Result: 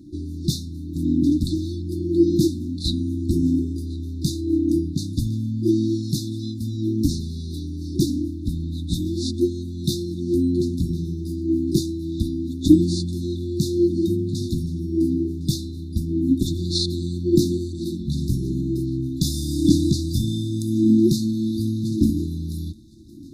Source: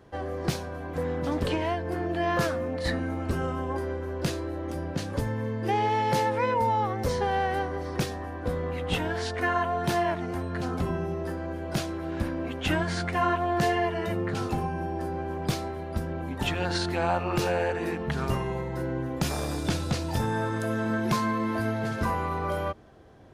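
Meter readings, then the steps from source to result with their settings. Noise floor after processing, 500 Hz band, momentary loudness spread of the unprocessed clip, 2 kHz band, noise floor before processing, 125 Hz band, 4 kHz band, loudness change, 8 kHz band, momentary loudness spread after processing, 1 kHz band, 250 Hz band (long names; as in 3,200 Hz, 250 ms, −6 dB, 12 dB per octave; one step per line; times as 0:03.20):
−32 dBFS, +1.0 dB, 7 LU, below −40 dB, −36 dBFS, +7.0 dB, +5.5 dB, +6.0 dB, +7.0 dB, 10 LU, below −40 dB, +11.0 dB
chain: linear-phase brick-wall band-stop 360–3,500 Hz
on a send: feedback echo with a high-pass in the loop 1,059 ms, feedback 38%, level −21.5 dB
on the sum: auto-filter bell 0.86 Hz 270–2,800 Hz +14 dB
level +6.5 dB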